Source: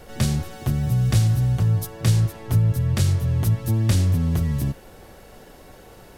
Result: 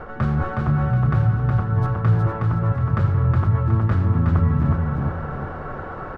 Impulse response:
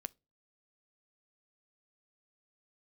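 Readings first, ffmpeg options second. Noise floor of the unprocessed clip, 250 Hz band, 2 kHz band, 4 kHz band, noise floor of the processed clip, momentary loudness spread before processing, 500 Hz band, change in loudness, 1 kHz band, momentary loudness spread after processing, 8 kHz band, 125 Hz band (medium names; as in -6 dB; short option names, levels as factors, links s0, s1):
-46 dBFS, +2.5 dB, +5.5 dB, under -15 dB, -33 dBFS, 6 LU, +5.0 dB, +1.0 dB, +11.0 dB, 10 LU, under -25 dB, +1.5 dB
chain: -af "areverse,acompressor=threshold=0.0398:ratio=4,areverse,lowpass=f=1300:t=q:w=4.6,aecho=1:1:366|732|1098|1464|1830:0.708|0.29|0.119|0.0488|0.02,volume=2.82"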